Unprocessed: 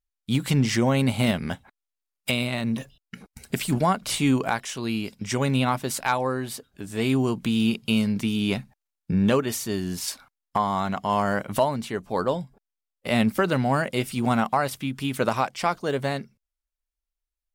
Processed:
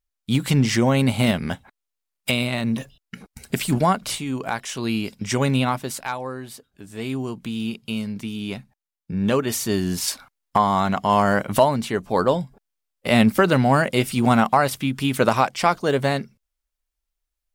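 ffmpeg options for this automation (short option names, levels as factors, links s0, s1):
-af "volume=20,afade=t=out:st=4.04:d=0.21:silence=0.251189,afade=t=in:st=4.25:d=0.55:silence=0.237137,afade=t=out:st=5.43:d=0.7:silence=0.375837,afade=t=in:st=9.11:d=0.56:silence=0.298538"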